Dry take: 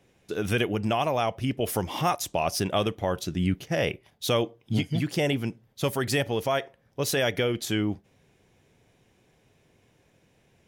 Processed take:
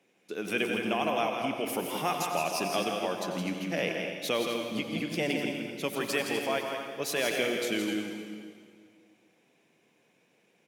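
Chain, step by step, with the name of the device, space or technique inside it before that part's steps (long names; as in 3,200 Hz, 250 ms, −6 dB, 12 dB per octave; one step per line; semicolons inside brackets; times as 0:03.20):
stadium PA (high-pass filter 190 Hz 24 dB per octave; parametric band 2,400 Hz +6 dB 0.33 octaves; loudspeakers that aren't time-aligned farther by 57 metres −6 dB, 86 metres −11 dB; convolution reverb RT60 2.1 s, pre-delay 83 ms, DRR 5 dB)
level −5.5 dB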